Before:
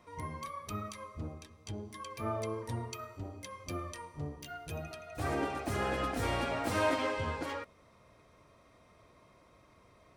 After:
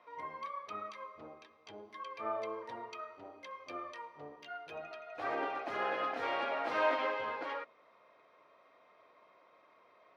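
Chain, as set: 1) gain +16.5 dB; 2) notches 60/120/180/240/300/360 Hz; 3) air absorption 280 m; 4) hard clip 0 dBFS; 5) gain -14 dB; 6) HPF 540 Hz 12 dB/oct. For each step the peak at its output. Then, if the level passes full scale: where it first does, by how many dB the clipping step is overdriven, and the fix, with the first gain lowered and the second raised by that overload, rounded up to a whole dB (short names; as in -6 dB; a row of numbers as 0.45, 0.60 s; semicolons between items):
-1.5, -1.5, -2.5, -2.5, -16.5, -19.5 dBFS; no overload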